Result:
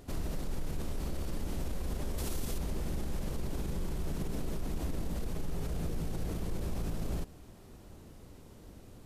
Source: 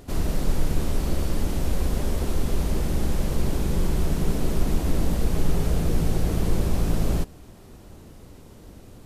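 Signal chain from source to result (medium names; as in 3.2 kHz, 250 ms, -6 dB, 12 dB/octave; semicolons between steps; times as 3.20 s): peak limiter -20.5 dBFS, peak gain reduction 11.5 dB; 2.18–2.58 s: treble shelf 3.4 kHz +10 dB; trim -6.5 dB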